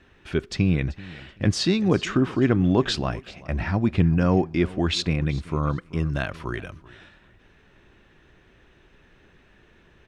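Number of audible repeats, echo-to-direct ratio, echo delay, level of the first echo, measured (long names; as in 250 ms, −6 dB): 2, −20.0 dB, 384 ms, −20.0 dB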